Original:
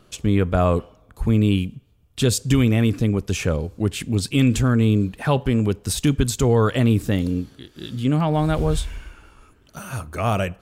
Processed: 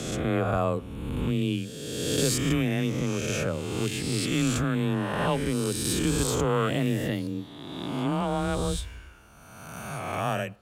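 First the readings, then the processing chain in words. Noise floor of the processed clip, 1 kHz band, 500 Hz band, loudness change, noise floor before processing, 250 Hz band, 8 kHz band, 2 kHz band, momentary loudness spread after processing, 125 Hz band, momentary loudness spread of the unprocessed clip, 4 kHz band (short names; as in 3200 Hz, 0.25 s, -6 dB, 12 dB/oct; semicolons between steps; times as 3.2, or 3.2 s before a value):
-47 dBFS, -3.5 dB, -5.0 dB, -7.0 dB, -56 dBFS, -7.0 dB, -1.5 dB, -2.5 dB, 10 LU, -9.0 dB, 13 LU, -2.5 dB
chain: spectral swells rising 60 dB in 1.70 s; frequency shift +18 Hz; low shelf 120 Hz -5 dB; gain -8.5 dB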